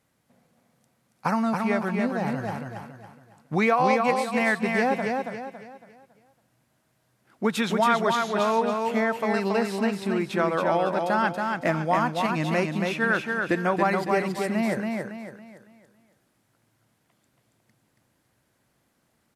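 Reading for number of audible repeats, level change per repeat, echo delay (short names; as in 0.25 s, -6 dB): 4, -8.5 dB, 0.278 s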